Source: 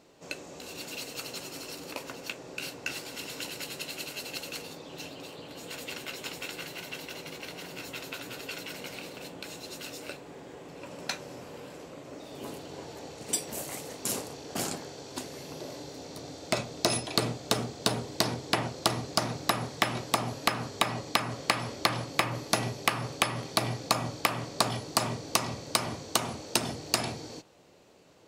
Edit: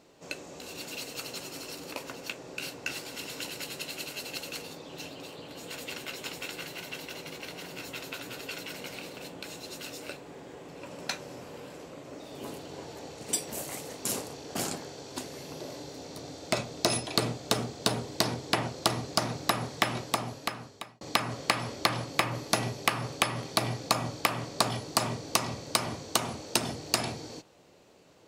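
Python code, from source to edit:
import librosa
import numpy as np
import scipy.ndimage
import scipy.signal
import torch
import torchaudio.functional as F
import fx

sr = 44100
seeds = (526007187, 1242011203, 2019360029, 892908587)

y = fx.edit(x, sr, fx.fade_out_span(start_s=19.93, length_s=1.08), tone=tone)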